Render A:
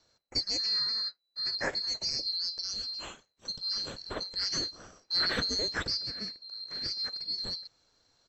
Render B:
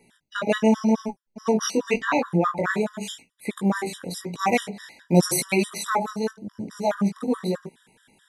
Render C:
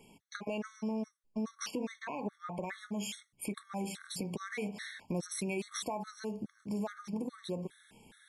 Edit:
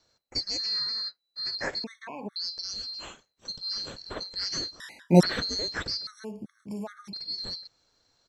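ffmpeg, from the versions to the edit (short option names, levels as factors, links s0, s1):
-filter_complex "[2:a]asplit=2[s0][s1];[0:a]asplit=4[s2][s3][s4][s5];[s2]atrim=end=1.842[s6];[s0]atrim=start=1.838:end=2.362[s7];[s3]atrim=start=2.358:end=4.802[s8];[1:a]atrim=start=4.798:end=5.232[s9];[s4]atrim=start=5.228:end=6.072[s10];[s1]atrim=start=6.068:end=7.132[s11];[s5]atrim=start=7.128[s12];[s6][s7]acrossfade=d=0.004:c1=hsin:c2=hsin[s13];[s13][s8]acrossfade=d=0.004:c1=hsin:c2=hsin[s14];[s14][s9]acrossfade=d=0.004:c1=hsin:c2=hsin[s15];[s15][s10]acrossfade=d=0.004:c1=hsin:c2=hsin[s16];[s16][s11]acrossfade=d=0.004:c1=hsin:c2=hsin[s17];[s17][s12]acrossfade=d=0.004:c1=hsin:c2=hsin"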